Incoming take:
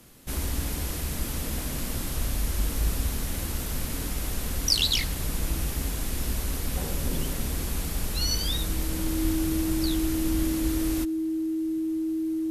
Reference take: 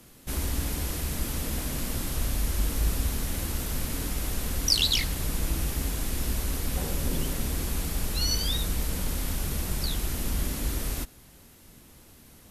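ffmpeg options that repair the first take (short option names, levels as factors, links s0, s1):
-filter_complex "[0:a]bandreject=f=320:w=30,asplit=3[s0][s1][s2];[s0]afade=t=out:st=9.23:d=0.02[s3];[s1]highpass=f=140:w=0.5412,highpass=f=140:w=1.3066,afade=t=in:st=9.23:d=0.02,afade=t=out:st=9.35:d=0.02[s4];[s2]afade=t=in:st=9.35:d=0.02[s5];[s3][s4][s5]amix=inputs=3:normalize=0"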